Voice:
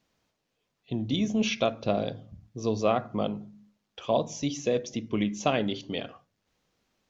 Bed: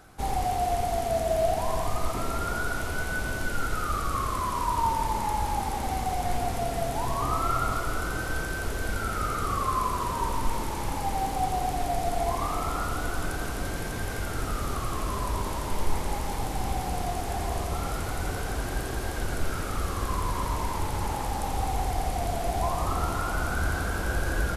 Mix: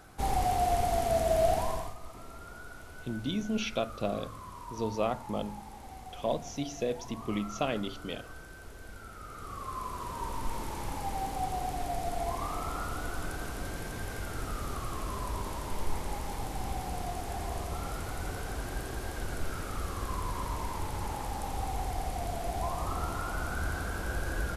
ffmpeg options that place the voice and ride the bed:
-filter_complex "[0:a]adelay=2150,volume=0.531[s0];[1:a]volume=3.16,afade=t=out:st=1.54:d=0.41:silence=0.158489,afade=t=in:st=9.23:d=1.48:silence=0.281838[s1];[s0][s1]amix=inputs=2:normalize=0"

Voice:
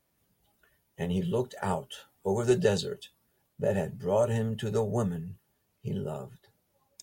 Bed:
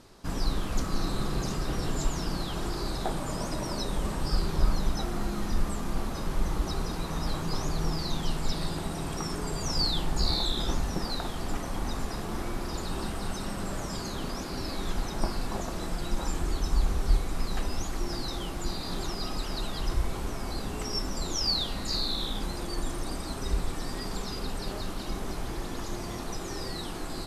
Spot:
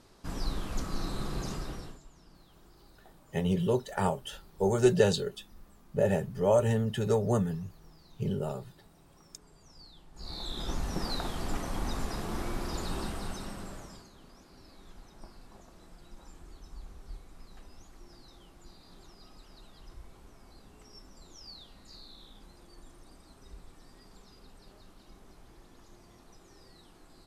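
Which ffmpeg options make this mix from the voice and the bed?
-filter_complex "[0:a]adelay=2350,volume=1.19[s0];[1:a]volume=10,afade=t=out:st=1.53:d=0.47:silence=0.0841395,afade=t=in:st=10.13:d=0.95:silence=0.0562341,afade=t=out:st=12.9:d=1.19:silence=0.105925[s1];[s0][s1]amix=inputs=2:normalize=0"

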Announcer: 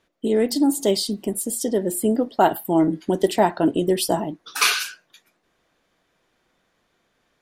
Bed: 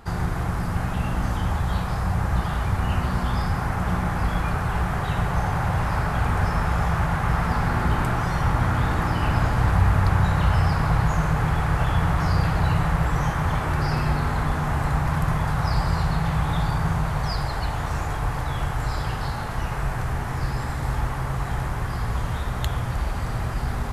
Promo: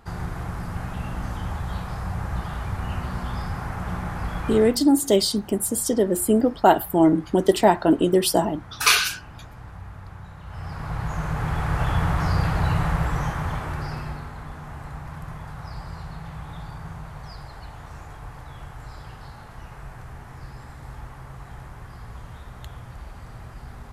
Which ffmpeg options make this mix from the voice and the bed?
-filter_complex "[0:a]adelay=4250,volume=1.19[s0];[1:a]volume=5.31,afade=t=out:st=4.56:d=0.23:silence=0.16788,afade=t=in:st=10.45:d=1.45:silence=0.1,afade=t=out:st=12.9:d=1.41:silence=0.237137[s1];[s0][s1]amix=inputs=2:normalize=0"

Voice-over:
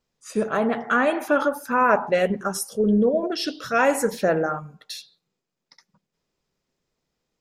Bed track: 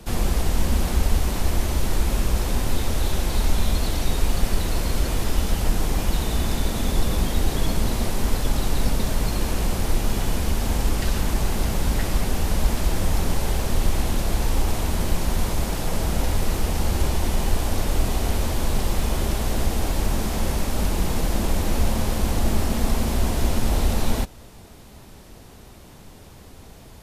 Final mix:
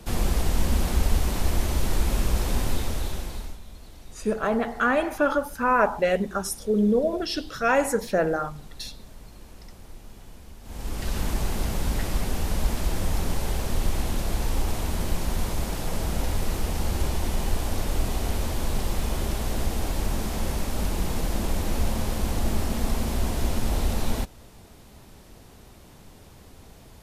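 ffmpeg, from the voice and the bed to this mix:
-filter_complex "[0:a]adelay=3900,volume=0.794[s0];[1:a]volume=6.68,afade=t=out:st=2.62:d=0.97:silence=0.0944061,afade=t=in:st=10.63:d=0.59:silence=0.11885[s1];[s0][s1]amix=inputs=2:normalize=0"

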